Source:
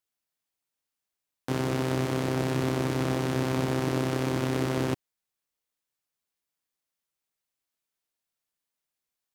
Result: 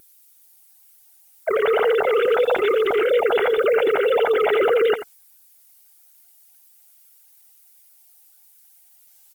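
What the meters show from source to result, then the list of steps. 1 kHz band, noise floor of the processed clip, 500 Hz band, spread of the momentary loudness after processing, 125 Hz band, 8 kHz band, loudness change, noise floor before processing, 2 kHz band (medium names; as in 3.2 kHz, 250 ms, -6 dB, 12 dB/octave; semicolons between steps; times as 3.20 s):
+9.5 dB, -54 dBFS, +15.0 dB, 4 LU, under -20 dB, no reading, +9.5 dB, under -85 dBFS, +11.5 dB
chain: formants replaced by sine waves; comb 1.4 ms, depth 64%; level rider gain up to 12.5 dB; peak limiter -15.5 dBFS, peak gain reduction 10.5 dB; on a send: delay 87 ms -12.5 dB; on the sum: added noise violet -55 dBFS; vibrato 1.7 Hz 19 cents; trim +3.5 dB; Opus 24 kbps 48 kHz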